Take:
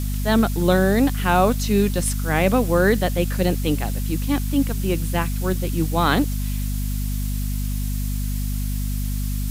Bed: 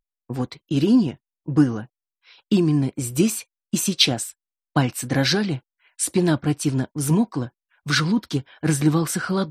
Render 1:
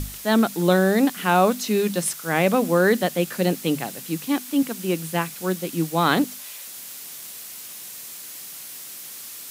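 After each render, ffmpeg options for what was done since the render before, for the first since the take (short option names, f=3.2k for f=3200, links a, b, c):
-af "bandreject=f=50:t=h:w=6,bandreject=f=100:t=h:w=6,bandreject=f=150:t=h:w=6,bandreject=f=200:t=h:w=6,bandreject=f=250:t=h:w=6"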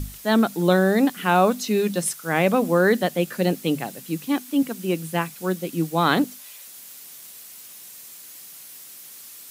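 -af "afftdn=nr=6:nf=-38"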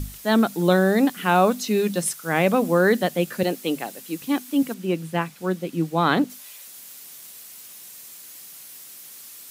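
-filter_complex "[0:a]asettb=1/sr,asplit=3[a][b][c];[a]atrim=end=3.434[d];[b]atrim=start=3.43:end=4.22,asetpts=PTS-STARTPTS,afade=t=in:d=0.004:c=qsin,afade=t=out:st=0.786:d=0.004:c=qsin,highpass=270[e];[c]atrim=start=4.216[f];[d][e]acrossfade=d=0.004:c1=hsin:c2=qsin[g];[g][f]acrossfade=d=0.004:c1=qsin:c2=hsin,asettb=1/sr,asplit=3[h][i][j];[h]atrim=end=4.744[k];[i]atrim=start=4.74:end=6.3,asetpts=PTS-STARTPTS,afade=t=in:d=0.004:c=qsin,afade=t=out:st=1.556:d=0.004:c=qsin,highshelf=f=5.8k:g=-10.5[l];[j]atrim=start=6.296[m];[k][l]acrossfade=d=0.004:c1=hsin:c2=qsin[n];[n][m]acrossfade=d=0.004:c1=qsin:c2=hsin"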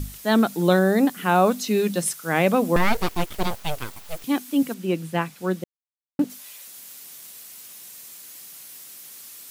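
-filter_complex "[0:a]asettb=1/sr,asplit=3[a][b][c];[a]atrim=end=0.794[d];[b]atrim=start=0.79:end=1.46,asetpts=PTS-STARTPTS,afade=t=in:d=0.004:c=qsin,afade=t=out:st=0.666:d=0.004:c=qsin,equalizer=f=3.1k:t=o:w=1.6:g=-3.5[e];[c]atrim=start=1.456[f];[d][e]acrossfade=d=0.004:c1=hsin:c2=qsin[g];[g][f]acrossfade=d=0.004:c1=qsin:c2=hsin,asettb=1/sr,asplit=3[h][i][j];[h]atrim=end=2.764[k];[i]atrim=start=2.76:end=4.24,asetpts=PTS-STARTPTS,afade=t=in:d=0.004:c=qsin,afade=t=out:st=1.476:d=0.004:c=qsin,aeval=exprs='abs(val(0))':c=same[l];[j]atrim=start=4.236[m];[k][l]acrossfade=d=0.004:c1=hsin:c2=qsin[n];[n][m]acrossfade=d=0.004:c1=qsin:c2=hsin,asplit=3[o][p][q];[o]atrim=end=5.64,asetpts=PTS-STARTPTS,afade=t=out:st=5.636:d=0.004:c=hsin[r];[p]atrim=start=5.64:end=6.19,asetpts=PTS-STARTPTS,volume=0[s];[q]atrim=start=6.19,asetpts=PTS-STARTPTS,afade=t=in:d=0.004:c=hsin[t];[r][s][t]concat=n=3:v=0:a=1"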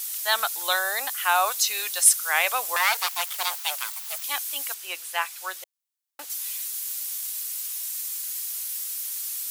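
-af "highpass=f=810:w=0.5412,highpass=f=810:w=1.3066,highshelf=f=3.3k:g=11.5"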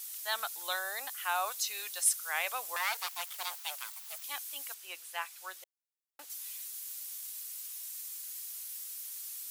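-af "volume=-11dB"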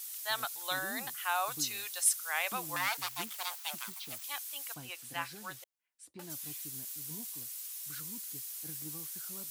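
-filter_complex "[1:a]volume=-30.5dB[a];[0:a][a]amix=inputs=2:normalize=0"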